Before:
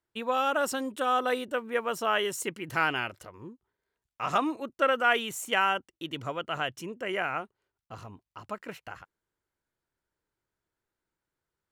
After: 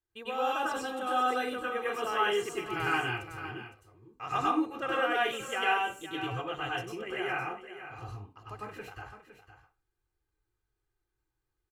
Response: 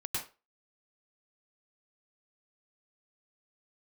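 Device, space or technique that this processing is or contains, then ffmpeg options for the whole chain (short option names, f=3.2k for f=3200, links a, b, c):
microphone above a desk: -filter_complex "[0:a]aecho=1:1:2.5:0.55[a];[1:a]atrim=start_sample=2205[b];[a][b]afir=irnorm=-1:irlink=0,lowshelf=f=86:g=11.5,aecho=1:1:510:0.251,acrossover=split=6100[c][d];[d]acompressor=threshold=-45dB:ratio=4:attack=1:release=60[e];[c][e]amix=inputs=2:normalize=0,volume=-6.5dB"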